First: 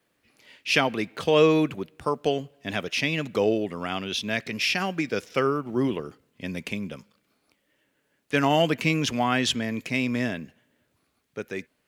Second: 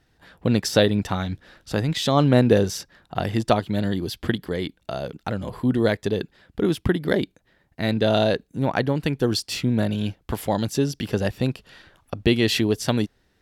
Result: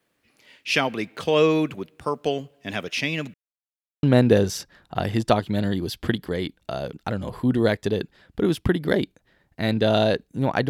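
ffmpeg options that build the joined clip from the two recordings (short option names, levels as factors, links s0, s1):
-filter_complex "[0:a]apad=whole_dur=10.69,atrim=end=10.69,asplit=2[s0][s1];[s0]atrim=end=3.34,asetpts=PTS-STARTPTS,afade=t=out:st=3.336:d=0.004:c=hsin[s2];[s1]atrim=start=3.34:end=4.03,asetpts=PTS-STARTPTS,volume=0[s3];[1:a]atrim=start=2.23:end=8.89,asetpts=PTS-STARTPTS,afade=t=in:d=0.004:c=hsin[s4];[s2][s3][s4]concat=n=3:v=0:a=1"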